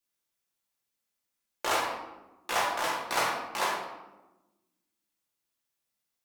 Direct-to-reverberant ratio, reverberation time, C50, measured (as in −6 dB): −4.5 dB, 1.1 s, 2.0 dB